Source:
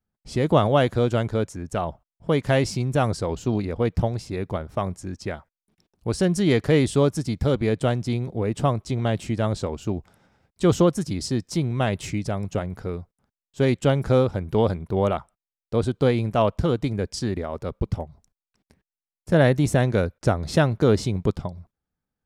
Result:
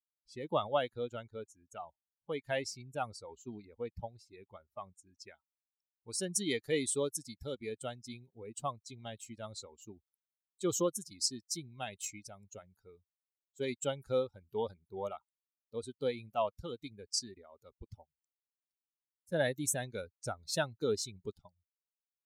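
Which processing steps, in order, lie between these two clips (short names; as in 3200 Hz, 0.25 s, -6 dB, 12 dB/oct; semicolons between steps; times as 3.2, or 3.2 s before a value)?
per-bin expansion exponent 2; tone controls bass -13 dB, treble +3 dB, from 5.16 s treble +14 dB; gain -7.5 dB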